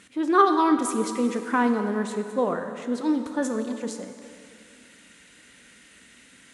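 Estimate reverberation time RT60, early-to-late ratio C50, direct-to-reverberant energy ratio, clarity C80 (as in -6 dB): 2.5 s, 7.0 dB, 6.5 dB, 8.0 dB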